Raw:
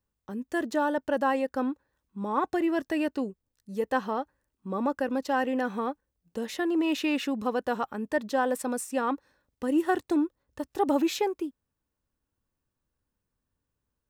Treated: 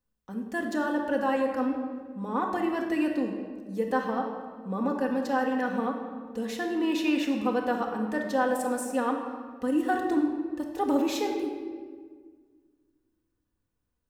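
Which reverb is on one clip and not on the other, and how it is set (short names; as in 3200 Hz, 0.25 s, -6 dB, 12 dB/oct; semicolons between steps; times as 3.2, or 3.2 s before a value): shoebox room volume 2000 m³, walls mixed, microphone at 1.9 m; gain -3 dB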